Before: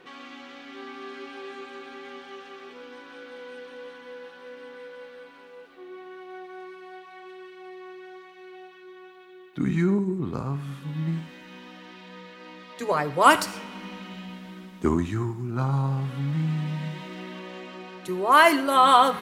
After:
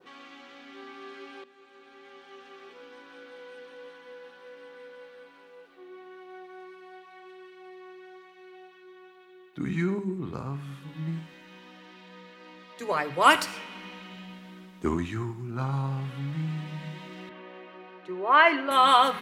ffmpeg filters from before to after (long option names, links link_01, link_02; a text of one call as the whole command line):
ffmpeg -i in.wav -filter_complex "[0:a]asettb=1/sr,asplit=3[link_01][link_02][link_03];[link_01]atrim=end=17.294[link_04];[link_02]atrim=start=17.29:end=18.71,asetpts=PTS-STARTPTS,afade=type=in:duration=0.004:curve=qsin,afade=type=out:start_time=1.416:duration=0.004:curve=qsin,highpass=250,lowpass=2500[link_05];[link_03]atrim=start=18.706[link_06];[link_04][link_05]acrossfade=duration=0.004:curve1=hsin:curve2=qsin[link_07];[link_07][link_06]acrossfade=duration=0.004:curve1=qsin:curve2=hsin,asplit=2[link_08][link_09];[link_08]atrim=end=1.44,asetpts=PTS-STARTPTS,afade=type=out:start_time=1.436:duration=0.004:curve=hsin:silence=0.149624[link_10];[link_09]atrim=start=1.44,asetpts=PTS-STARTPTS,afade=type=in:duration=1.22:silence=0.149624[link_11];[link_10][link_11]concat=n=2:v=0:a=1,adynamicequalizer=threshold=0.00794:dfrequency=2500:dqfactor=0.89:tfrequency=2500:tqfactor=0.89:attack=5:release=100:ratio=0.375:range=3.5:mode=boostabove:tftype=bell,bandreject=frequency=50:width_type=h:width=6,bandreject=frequency=100:width_type=h:width=6,bandreject=frequency=150:width_type=h:width=6,bandreject=frequency=200:width_type=h:width=6,bandreject=frequency=250:width_type=h:width=6,volume=-4.5dB" out.wav